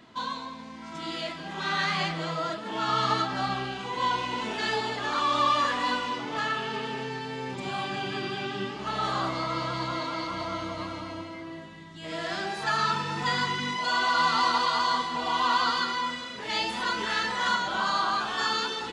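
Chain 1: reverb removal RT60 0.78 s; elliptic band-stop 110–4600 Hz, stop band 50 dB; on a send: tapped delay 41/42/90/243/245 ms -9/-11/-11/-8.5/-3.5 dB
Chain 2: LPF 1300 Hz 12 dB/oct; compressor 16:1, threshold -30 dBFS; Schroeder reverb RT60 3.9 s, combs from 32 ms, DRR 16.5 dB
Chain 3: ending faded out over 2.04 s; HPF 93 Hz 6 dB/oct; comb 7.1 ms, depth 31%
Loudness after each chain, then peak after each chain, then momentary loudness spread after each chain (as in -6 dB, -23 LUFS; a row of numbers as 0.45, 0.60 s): -38.5, -35.0, -28.0 LUFS; -24.0, -22.0, -12.0 dBFS; 13, 5, 14 LU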